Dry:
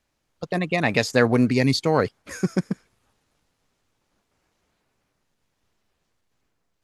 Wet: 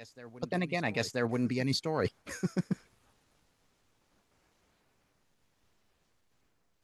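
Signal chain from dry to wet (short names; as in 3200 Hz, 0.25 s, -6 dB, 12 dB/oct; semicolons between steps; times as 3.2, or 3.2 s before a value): reverse; compressor 6:1, threshold -28 dBFS, peak gain reduction 15 dB; reverse; reverse echo 0.982 s -18 dB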